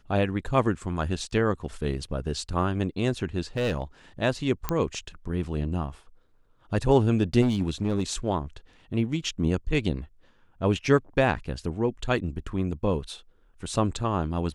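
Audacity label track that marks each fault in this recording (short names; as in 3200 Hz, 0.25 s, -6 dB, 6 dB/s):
3.560000	3.820000	clipped -22 dBFS
4.690000	4.690000	pop -11 dBFS
7.410000	8.030000	clipped -19 dBFS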